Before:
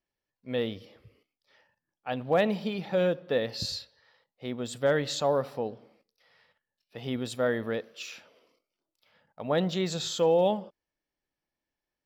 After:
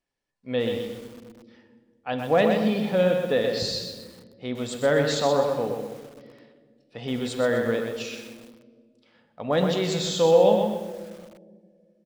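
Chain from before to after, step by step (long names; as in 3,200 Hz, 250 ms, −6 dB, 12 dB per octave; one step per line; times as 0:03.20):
on a send at −7 dB: convolution reverb RT60 1.9 s, pre-delay 4 ms
on the sum: downsampling to 22,050 Hz
feedback echo at a low word length 126 ms, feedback 35%, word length 8 bits, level −5.5 dB
level +3 dB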